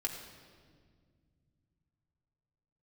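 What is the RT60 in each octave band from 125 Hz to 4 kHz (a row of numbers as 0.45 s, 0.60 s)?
4.5 s, 3.3 s, 2.1 s, 1.6 s, 1.5 s, 1.4 s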